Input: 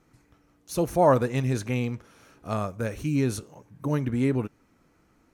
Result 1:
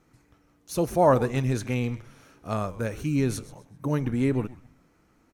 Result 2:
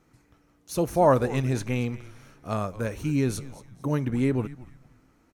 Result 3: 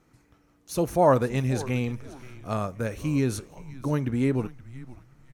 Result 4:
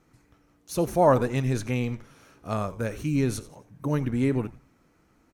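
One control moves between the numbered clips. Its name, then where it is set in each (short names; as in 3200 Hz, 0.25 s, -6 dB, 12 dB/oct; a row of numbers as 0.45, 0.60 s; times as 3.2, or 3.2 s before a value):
frequency-shifting echo, time: 129, 227, 524, 88 ms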